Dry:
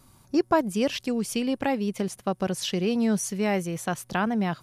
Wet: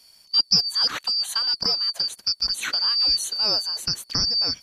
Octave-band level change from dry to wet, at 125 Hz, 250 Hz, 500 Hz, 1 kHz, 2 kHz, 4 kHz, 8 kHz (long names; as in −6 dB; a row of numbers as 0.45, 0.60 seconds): can't be measured, −17.5 dB, −14.0 dB, −7.5 dB, −1.5 dB, +18.5 dB, +4.0 dB